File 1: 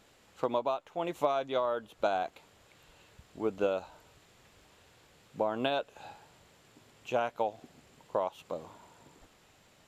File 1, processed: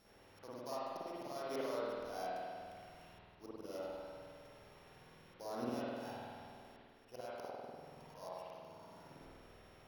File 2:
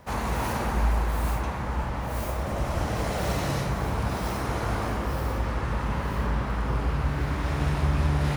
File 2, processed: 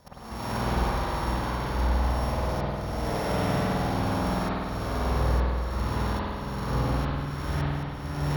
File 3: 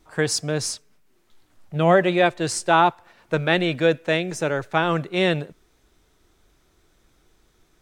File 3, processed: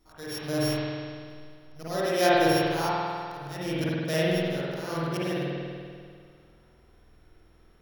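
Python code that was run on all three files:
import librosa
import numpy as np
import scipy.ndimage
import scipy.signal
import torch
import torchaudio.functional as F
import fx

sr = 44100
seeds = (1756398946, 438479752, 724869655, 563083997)

y = np.r_[np.sort(x[:len(x) // 8 * 8].reshape(-1, 8), axis=1).ravel(), x[len(x) // 8 * 8:]]
y = fx.auto_swell(y, sr, attack_ms=482.0)
y = fx.rev_spring(y, sr, rt60_s=2.1, pass_ms=(49,), chirp_ms=60, drr_db=-9.0)
y = F.gain(torch.from_numpy(y), -7.0).numpy()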